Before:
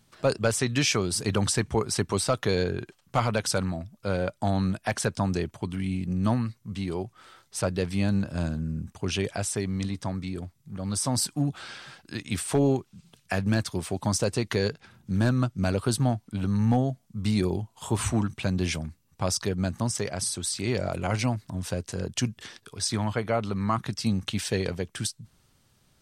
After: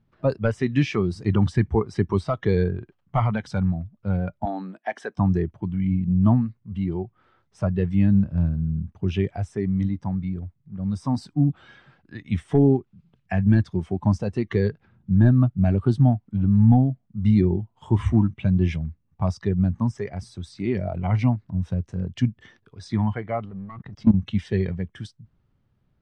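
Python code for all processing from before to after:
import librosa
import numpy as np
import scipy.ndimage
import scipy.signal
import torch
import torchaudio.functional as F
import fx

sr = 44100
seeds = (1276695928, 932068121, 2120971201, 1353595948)

y = fx.chain(x, sr, fx.highpass(hz=270.0, slope=24),
    fx.notch(hz=7000.0, q=26.0), at=(4.45, 5.19))
y = fx.chain(y, sr, fx.high_shelf(hz=2700.0, db=-12.0),
    fx.leveller(passes=3),
    fx.level_steps(step_db=18), at=(23.45, 24.14))
y = scipy.signal.sosfilt(scipy.signal.butter(2, 2200.0, 'lowpass', fs=sr, output='sos'), y)
y = fx.noise_reduce_blind(y, sr, reduce_db=10)
y = fx.low_shelf(y, sr, hz=350.0, db=10.0)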